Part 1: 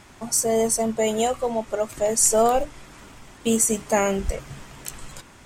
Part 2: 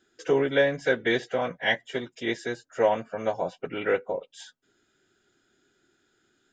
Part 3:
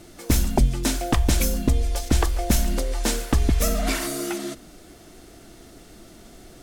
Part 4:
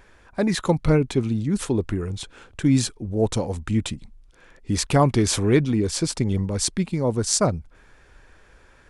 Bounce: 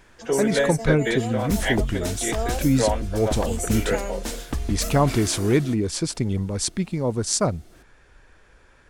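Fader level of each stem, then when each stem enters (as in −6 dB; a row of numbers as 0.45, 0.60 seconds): −11.0, −0.5, −7.5, −1.5 decibels; 0.00, 0.00, 1.20, 0.00 seconds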